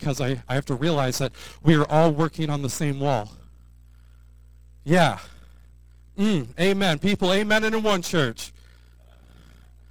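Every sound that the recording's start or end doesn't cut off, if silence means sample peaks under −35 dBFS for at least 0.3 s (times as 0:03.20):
0:04.86–0:05.28
0:06.18–0:08.48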